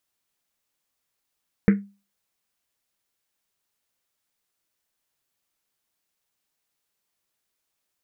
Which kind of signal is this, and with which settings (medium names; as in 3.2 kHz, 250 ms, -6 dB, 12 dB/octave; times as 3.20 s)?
Risset drum, pitch 200 Hz, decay 0.32 s, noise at 1.8 kHz, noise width 860 Hz, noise 10%